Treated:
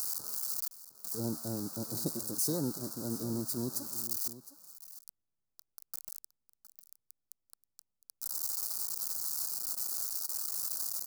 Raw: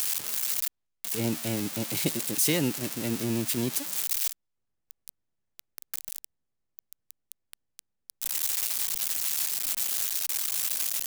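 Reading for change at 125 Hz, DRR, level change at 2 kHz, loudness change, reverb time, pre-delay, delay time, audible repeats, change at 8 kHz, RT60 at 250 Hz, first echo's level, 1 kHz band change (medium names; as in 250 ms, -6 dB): -6.5 dB, no reverb, -21.5 dB, -7.0 dB, no reverb, no reverb, 711 ms, 1, -7.0 dB, no reverb, -15.5 dB, -7.0 dB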